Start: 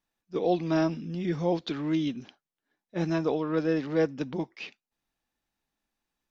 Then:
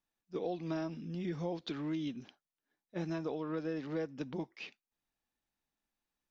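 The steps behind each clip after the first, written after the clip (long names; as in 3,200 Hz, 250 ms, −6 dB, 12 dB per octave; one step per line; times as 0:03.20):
downward compressor, threshold −27 dBFS, peak gain reduction 8 dB
level −6 dB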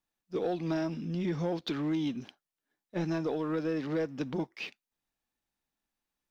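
leveller curve on the samples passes 1
level +3 dB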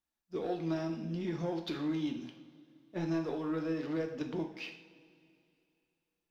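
coupled-rooms reverb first 0.55 s, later 2.7 s, from −17 dB, DRR 3.5 dB
level −5 dB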